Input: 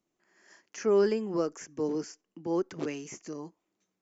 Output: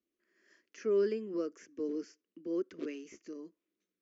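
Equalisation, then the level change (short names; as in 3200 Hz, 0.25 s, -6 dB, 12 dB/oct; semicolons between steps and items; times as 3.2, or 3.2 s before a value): HPF 42 Hz; air absorption 140 m; fixed phaser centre 340 Hz, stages 4; -4.0 dB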